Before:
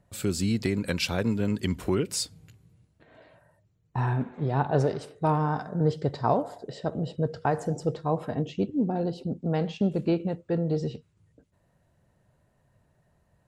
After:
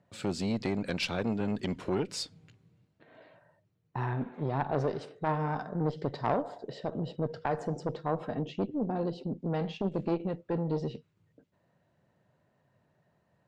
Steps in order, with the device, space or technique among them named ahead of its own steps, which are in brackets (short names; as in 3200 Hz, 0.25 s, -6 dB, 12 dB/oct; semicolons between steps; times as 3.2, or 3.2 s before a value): valve radio (BPF 140–4800 Hz; tube stage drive 18 dB, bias 0.4; core saturation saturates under 480 Hz)